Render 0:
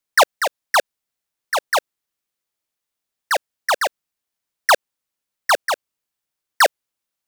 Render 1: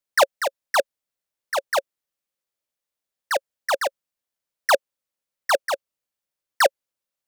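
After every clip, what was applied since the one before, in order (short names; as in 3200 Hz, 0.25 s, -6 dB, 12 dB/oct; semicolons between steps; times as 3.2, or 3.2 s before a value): bell 550 Hz +7.5 dB 0.27 oct; gain -5 dB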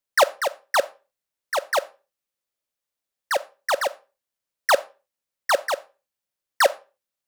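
reverb RT60 0.35 s, pre-delay 5 ms, DRR 17.5 dB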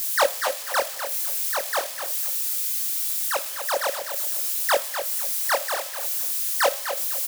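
switching spikes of -18.5 dBFS; chorus voices 2, 0.64 Hz, delay 23 ms, depth 2.2 ms; on a send: feedback echo 0.251 s, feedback 25%, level -9 dB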